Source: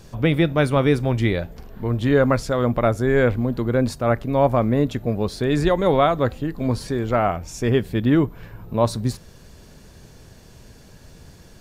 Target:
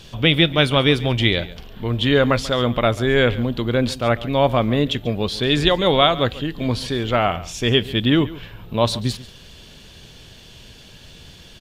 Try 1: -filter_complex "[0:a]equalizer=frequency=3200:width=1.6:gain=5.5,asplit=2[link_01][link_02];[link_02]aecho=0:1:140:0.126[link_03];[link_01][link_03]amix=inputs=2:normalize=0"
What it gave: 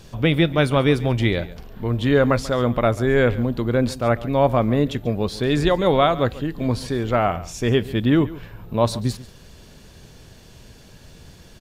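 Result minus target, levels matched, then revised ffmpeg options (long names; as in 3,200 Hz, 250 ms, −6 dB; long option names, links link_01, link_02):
4,000 Hz band −8.5 dB
-filter_complex "[0:a]equalizer=frequency=3200:width=1.6:gain=17.5,asplit=2[link_01][link_02];[link_02]aecho=0:1:140:0.126[link_03];[link_01][link_03]amix=inputs=2:normalize=0"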